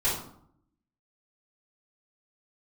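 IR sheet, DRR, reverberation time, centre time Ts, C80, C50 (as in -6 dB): -9.5 dB, 0.65 s, 43 ms, 8.0 dB, 3.0 dB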